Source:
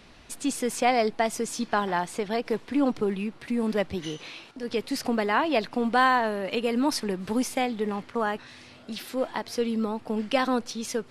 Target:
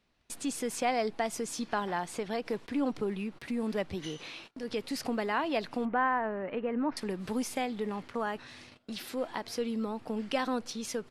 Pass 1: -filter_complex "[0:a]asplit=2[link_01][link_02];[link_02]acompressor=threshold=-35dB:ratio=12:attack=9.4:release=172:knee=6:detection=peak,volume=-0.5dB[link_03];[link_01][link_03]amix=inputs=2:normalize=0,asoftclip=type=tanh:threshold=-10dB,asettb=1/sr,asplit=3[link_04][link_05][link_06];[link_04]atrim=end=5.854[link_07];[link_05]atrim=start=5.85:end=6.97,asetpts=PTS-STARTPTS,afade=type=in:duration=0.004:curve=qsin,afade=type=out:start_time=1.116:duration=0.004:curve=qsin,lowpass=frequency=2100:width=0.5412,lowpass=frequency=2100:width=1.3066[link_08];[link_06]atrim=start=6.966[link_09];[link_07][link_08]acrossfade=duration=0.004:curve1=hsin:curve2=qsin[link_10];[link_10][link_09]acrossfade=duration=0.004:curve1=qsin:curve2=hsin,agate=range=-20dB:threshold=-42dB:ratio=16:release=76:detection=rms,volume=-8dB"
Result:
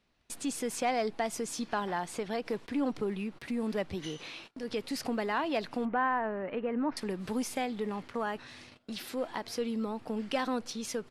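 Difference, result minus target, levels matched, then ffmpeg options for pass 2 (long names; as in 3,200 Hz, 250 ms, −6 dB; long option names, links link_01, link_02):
soft clipping: distortion +17 dB
-filter_complex "[0:a]asplit=2[link_01][link_02];[link_02]acompressor=threshold=-35dB:ratio=12:attack=9.4:release=172:knee=6:detection=peak,volume=-0.5dB[link_03];[link_01][link_03]amix=inputs=2:normalize=0,asoftclip=type=tanh:threshold=-0.5dB,asettb=1/sr,asplit=3[link_04][link_05][link_06];[link_04]atrim=end=5.854[link_07];[link_05]atrim=start=5.85:end=6.97,asetpts=PTS-STARTPTS,afade=type=in:duration=0.004:curve=qsin,afade=type=out:start_time=1.116:duration=0.004:curve=qsin,lowpass=frequency=2100:width=0.5412,lowpass=frequency=2100:width=1.3066[link_08];[link_06]atrim=start=6.966[link_09];[link_07][link_08]acrossfade=duration=0.004:curve1=hsin:curve2=qsin[link_10];[link_10][link_09]acrossfade=duration=0.004:curve1=qsin:curve2=hsin,agate=range=-20dB:threshold=-42dB:ratio=16:release=76:detection=rms,volume=-8dB"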